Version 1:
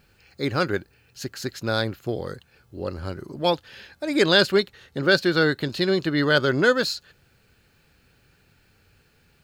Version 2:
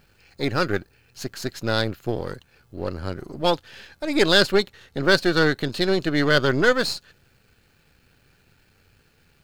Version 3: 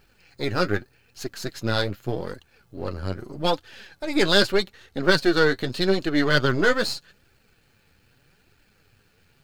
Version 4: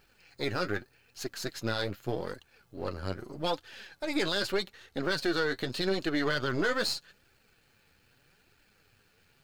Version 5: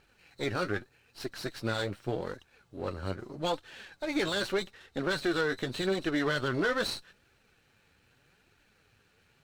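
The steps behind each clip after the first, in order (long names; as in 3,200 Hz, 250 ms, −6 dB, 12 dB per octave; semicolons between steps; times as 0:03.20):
gain on one half-wave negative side −7 dB; level +3 dB
flanger 0.82 Hz, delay 2.2 ms, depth 9.2 ms, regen +35%; level +2.5 dB
low-shelf EQ 310 Hz −5.5 dB; brickwall limiter −15.5 dBFS, peak gain reduction 11.5 dB; level −2.5 dB
hearing-aid frequency compression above 3,600 Hz 1.5 to 1; windowed peak hold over 3 samples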